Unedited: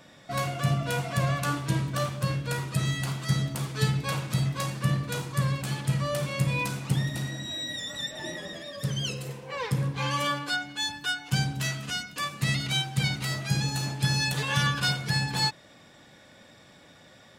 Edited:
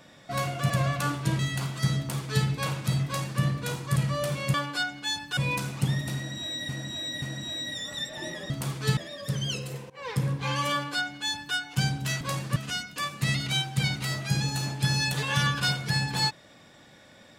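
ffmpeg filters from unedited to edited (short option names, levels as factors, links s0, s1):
-filter_complex "[0:a]asplit=13[s0][s1][s2][s3][s4][s5][s6][s7][s8][s9][s10][s11][s12];[s0]atrim=end=0.702[s13];[s1]atrim=start=1.128:end=1.822[s14];[s2]atrim=start=2.848:end=5.422[s15];[s3]atrim=start=5.868:end=6.452[s16];[s4]atrim=start=10.268:end=11.102[s17];[s5]atrim=start=6.448:end=7.772[s18];[s6]atrim=start=7.238:end=7.772[s19];[s7]atrim=start=7.238:end=8.522[s20];[s8]atrim=start=3.438:end=3.912[s21];[s9]atrim=start=8.518:end=9.45,asetpts=PTS-STARTPTS,afade=t=out:st=0.928:d=0.004:c=hsin:silence=0.0891251[s22];[s10]atrim=start=9.45:end=11.762,asetpts=PTS-STARTPTS,afade=t=in:d=0.27:silence=0.0891251[s23];[s11]atrim=start=4.518:end=4.872[s24];[s12]atrim=start=11.758[s25];[s13][s14]acrossfade=d=0.004:c1=hsin:c2=hsin[s26];[s26][s15]acrossfade=d=0.004:c1=hsin:c2=hsin[s27];[s27][s16]acrossfade=d=0.004:c1=hsin:c2=hsin[s28];[s28][s17]acrossfade=d=0.004:c1=hsin:c2=hsin[s29];[s29][s18]acrossfade=d=0.004:c1=hsin:c2=hsin[s30];[s30][s19]acrossfade=d=0.004:c1=hsin:c2=hsin[s31];[s31][s20]acrossfade=d=0.004:c1=hsin:c2=hsin[s32];[s32][s21]acrossfade=d=0.004:c1=hsin:c2=hsin[s33];[s22][s23]concat=n=2:v=0:a=1[s34];[s33][s34]acrossfade=d=0.004:c1=hsin:c2=hsin[s35];[s35][s24]acrossfade=d=0.004:c1=hsin:c2=hsin[s36];[s36][s25]acrossfade=d=0.004:c1=hsin:c2=hsin"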